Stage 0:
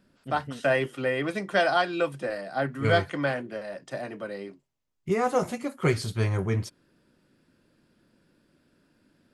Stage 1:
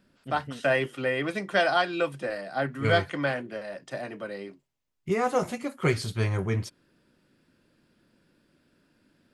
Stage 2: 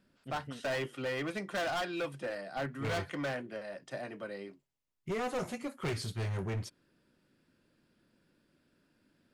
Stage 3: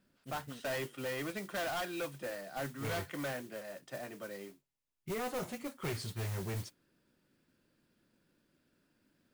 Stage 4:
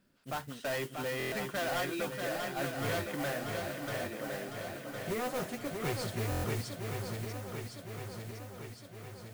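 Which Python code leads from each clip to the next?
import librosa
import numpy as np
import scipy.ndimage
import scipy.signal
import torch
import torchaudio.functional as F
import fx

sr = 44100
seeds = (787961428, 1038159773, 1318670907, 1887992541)

y1 = fx.peak_eq(x, sr, hz=2700.0, db=2.5, octaves=1.7)
y1 = y1 * librosa.db_to_amplitude(-1.0)
y2 = np.clip(y1, -10.0 ** (-25.5 / 20.0), 10.0 ** (-25.5 / 20.0))
y2 = y2 * librosa.db_to_amplitude(-5.5)
y3 = fx.mod_noise(y2, sr, seeds[0], snr_db=13)
y3 = y3 * librosa.db_to_amplitude(-3.0)
y4 = fx.echo_swing(y3, sr, ms=1061, ratio=1.5, feedback_pct=58, wet_db=-5.0)
y4 = fx.buffer_glitch(y4, sr, at_s=(1.18, 6.3), block=1024, repeats=5)
y4 = y4 * librosa.db_to_amplitude(2.0)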